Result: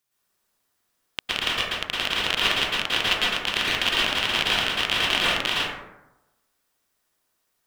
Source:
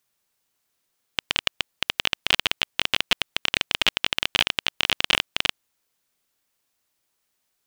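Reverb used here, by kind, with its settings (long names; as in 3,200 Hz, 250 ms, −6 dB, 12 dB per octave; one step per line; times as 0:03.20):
dense smooth reverb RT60 0.98 s, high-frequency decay 0.4×, pre-delay 100 ms, DRR −8 dB
level −5 dB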